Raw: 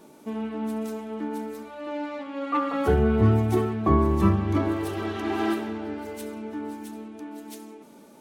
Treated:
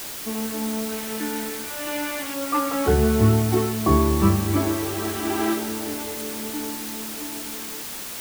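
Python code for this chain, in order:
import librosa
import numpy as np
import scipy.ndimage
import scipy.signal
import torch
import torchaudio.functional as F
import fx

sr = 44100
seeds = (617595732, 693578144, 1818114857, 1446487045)

y = fx.band_shelf(x, sr, hz=2400.0, db=10.0, octaves=1.7, at=(0.91, 2.34))
y = fx.quant_dither(y, sr, seeds[0], bits=6, dither='triangular')
y = F.gain(torch.from_numpy(y), 2.0).numpy()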